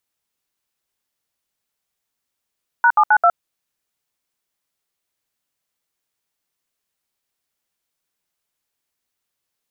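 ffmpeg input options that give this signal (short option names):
-f lavfi -i "aevalsrc='0.251*clip(min(mod(t,0.132),0.064-mod(t,0.132))/0.002,0,1)*(eq(floor(t/0.132),0)*(sin(2*PI*941*mod(t,0.132))+sin(2*PI*1477*mod(t,0.132)))+eq(floor(t/0.132),1)*(sin(2*PI*852*mod(t,0.132))+sin(2*PI*1209*mod(t,0.132)))+eq(floor(t/0.132),2)*(sin(2*PI*852*mod(t,0.132))+sin(2*PI*1477*mod(t,0.132)))+eq(floor(t/0.132),3)*(sin(2*PI*697*mod(t,0.132))+sin(2*PI*1336*mod(t,0.132))))':d=0.528:s=44100"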